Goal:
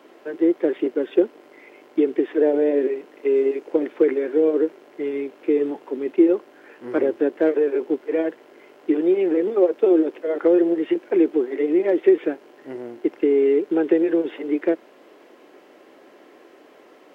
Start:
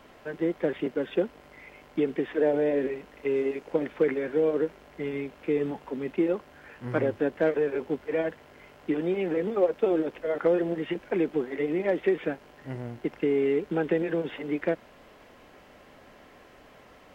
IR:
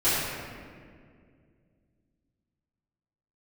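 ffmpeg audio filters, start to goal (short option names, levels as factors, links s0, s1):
-af "highpass=f=340:t=q:w=3.5"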